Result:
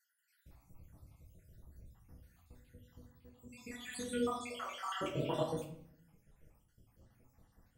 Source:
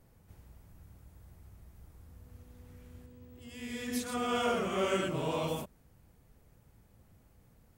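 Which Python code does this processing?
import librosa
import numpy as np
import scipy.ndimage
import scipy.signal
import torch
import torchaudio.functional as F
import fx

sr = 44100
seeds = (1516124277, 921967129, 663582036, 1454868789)

y = fx.spec_dropout(x, sr, seeds[0], share_pct=67)
y = fx.highpass(y, sr, hz=720.0, slope=24, at=(4.3, 4.85), fade=0.02)
y = fx.room_shoebox(y, sr, seeds[1], volume_m3=130.0, walls='mixed', distance_m=0.67)
y = y * librosa.db_to_amplitude(-2.0)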